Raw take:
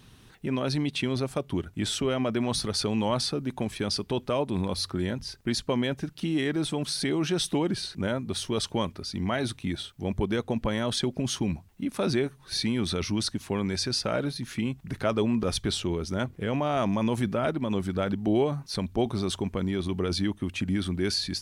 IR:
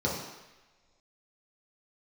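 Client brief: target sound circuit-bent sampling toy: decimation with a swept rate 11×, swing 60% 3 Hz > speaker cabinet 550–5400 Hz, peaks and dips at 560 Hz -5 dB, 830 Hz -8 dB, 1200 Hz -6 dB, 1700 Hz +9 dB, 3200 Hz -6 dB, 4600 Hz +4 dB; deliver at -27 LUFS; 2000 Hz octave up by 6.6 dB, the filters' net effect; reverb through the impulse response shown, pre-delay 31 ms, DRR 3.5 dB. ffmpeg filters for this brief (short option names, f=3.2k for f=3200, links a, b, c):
-filter_complex "[0:a]equalizer=f=2k:t=o:g=4,asplit=2[a][b];[1:a]atrim=start_sample=2205,adelay=31[c];[b][c]afir=irnorm=-1:irlink=0,volume=-13.5dB[d];[a][d]amix=inputs=2:normalize=0,acrusher=samples=11:mix=1:aa=0.000001:lfo=1:lforange=6.6:lforate=3,highpass=550,equalizer=f=560:t=q:w=4:g=-5,equalizer=f=830:t=q:w=4:g=-8,equalizer=f=1.2k:t=q:w=4:g=-6,equalizer=f=1.7k:t=q:w=4:g=9,equalizer=f=3.2k:t=q:w=4:g=-6,equalizer=f=4.6k:t=q:w=4:g=4,lowpass=f=5.4k:w=0.5412,lowpass=f=5.4k:w=1.3066,volume=5dB"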